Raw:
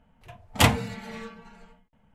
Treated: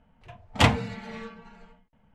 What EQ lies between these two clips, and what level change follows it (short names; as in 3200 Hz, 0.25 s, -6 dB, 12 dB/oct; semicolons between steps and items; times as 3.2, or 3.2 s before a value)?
Bessel low-pass 4900 Hz, order 2; 0.0 dB